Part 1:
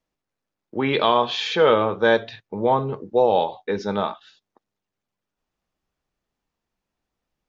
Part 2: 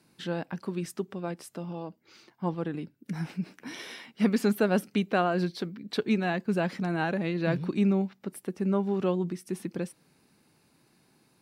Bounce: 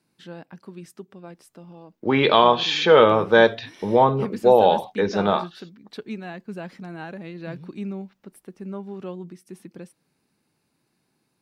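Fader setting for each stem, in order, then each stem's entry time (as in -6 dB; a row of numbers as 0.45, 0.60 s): +3.0, -7.0 dB; 1.30, 0.00 s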